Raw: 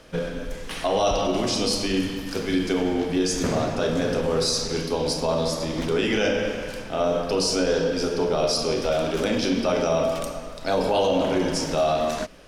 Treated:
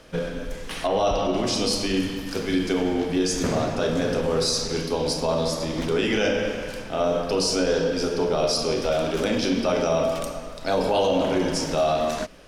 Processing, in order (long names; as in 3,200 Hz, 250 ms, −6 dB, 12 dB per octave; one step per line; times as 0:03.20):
0:00.86–0:01.45: high-shelf EQ 3,700 Hz → 5,900 Hz −9.5 dB